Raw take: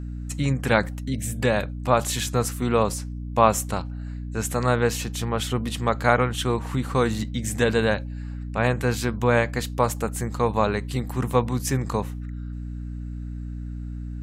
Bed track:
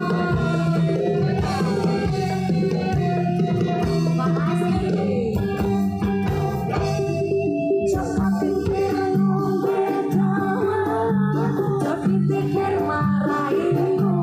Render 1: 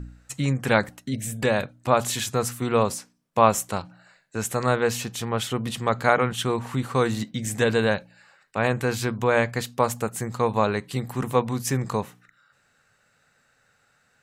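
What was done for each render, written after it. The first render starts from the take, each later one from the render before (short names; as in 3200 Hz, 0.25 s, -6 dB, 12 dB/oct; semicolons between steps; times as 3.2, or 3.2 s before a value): de-hum 60 Hz, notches 5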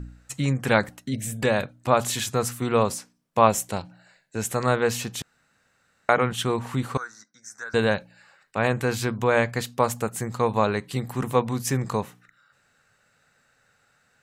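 3.47–4.47 bell 1200 Hz -7.5 dB 0.48 oct; 5.22–6.09 room tone; 6.97–7.74 double band-pass 2900 Hz, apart 2 oct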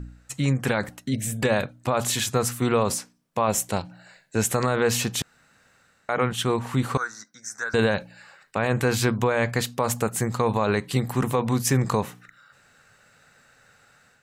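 AGC gain up to 7.5 dB; limiter -11.5 dBFS, peak gain reduction 10 dB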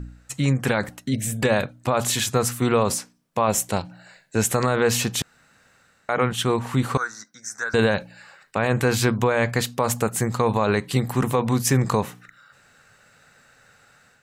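gain +2 dB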